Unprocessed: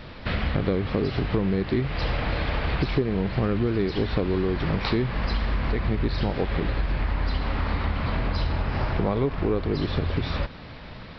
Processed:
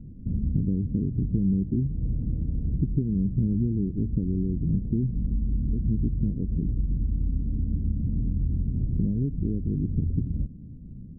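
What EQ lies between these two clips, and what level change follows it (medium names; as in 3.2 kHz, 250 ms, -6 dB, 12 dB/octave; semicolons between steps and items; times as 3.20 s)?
inverse Chebyshev low-pass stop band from 1.1 kHz, stop band 70 dB; tilt EQ -1.5 dB/octave; bass shelf 130 Hz -11.5 dB; +3.0 dB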